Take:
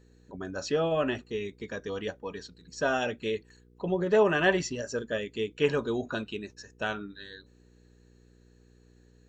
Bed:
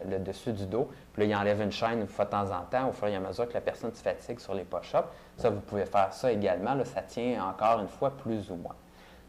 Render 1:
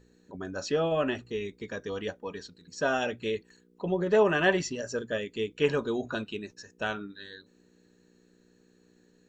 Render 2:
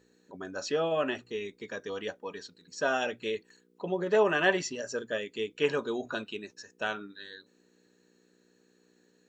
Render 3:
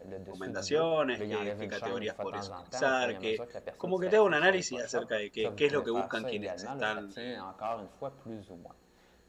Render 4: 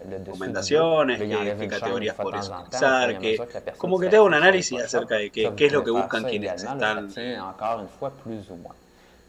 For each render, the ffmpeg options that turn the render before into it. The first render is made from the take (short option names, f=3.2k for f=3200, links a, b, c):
-af "bandreject=f=60:t=h:w=4,bandreject=f=120:t=h:w=4"
-af "highpass=f=330:p=1"
-filter_complex "[1:a]volume=-10.5dB[a];[0:a][a]amix=inputs=2:normalize=0"
-af "volume=9dB"